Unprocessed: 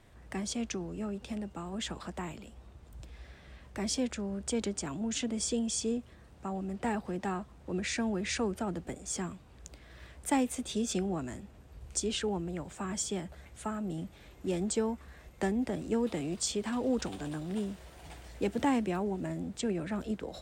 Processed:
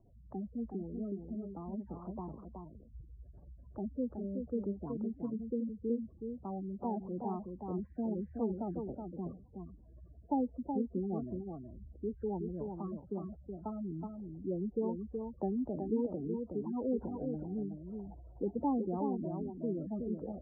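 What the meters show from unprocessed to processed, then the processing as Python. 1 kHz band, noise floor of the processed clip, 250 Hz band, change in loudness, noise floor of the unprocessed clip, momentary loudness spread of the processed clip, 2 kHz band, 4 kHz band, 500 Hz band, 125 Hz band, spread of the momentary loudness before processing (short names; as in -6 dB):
-4.5 dB, -57 dBFS, -2.5 dB, -4.0 dB, -55 dBFS, 14 LU, under -35 dB, under -40 dB, -3.0 dB, -3.0 dB, 18 LU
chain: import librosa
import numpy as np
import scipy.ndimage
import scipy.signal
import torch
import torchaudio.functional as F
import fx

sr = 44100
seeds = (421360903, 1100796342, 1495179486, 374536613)

y = fx.spec_gate(x, sr, threshold_db=-15, keep='strong')
y = scipy.signal.sosfilt(scipy.signal.butter(8, 1100.0, 'lowpass', fs=sr, output='sos'), y)
y = y + 10.0 ** (-5.5 / 20.0) * np.pad(y, (int(372 * sr / 1000.0), 0))[:len(y)]
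y = y * librosa.db_to_amplitude(-3.5)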